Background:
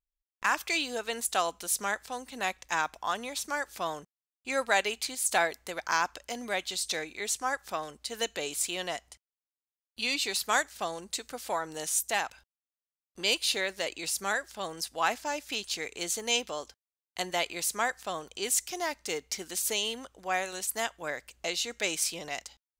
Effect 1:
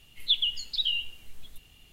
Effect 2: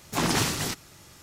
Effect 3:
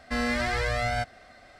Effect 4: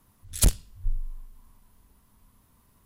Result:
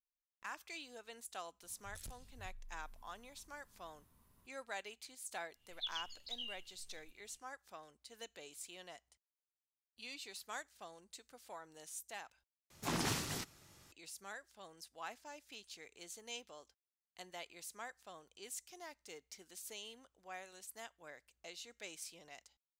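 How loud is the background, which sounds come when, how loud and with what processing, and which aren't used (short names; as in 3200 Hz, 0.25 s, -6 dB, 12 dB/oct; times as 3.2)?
background -19 dB
1.62 add 4 -8 dB + compressor 10:1, threshold -40 dBFS
5.53 add 1 -17.5 dB, fades 0.10 s
12.7 replace with 2 -12 dB
not used: 3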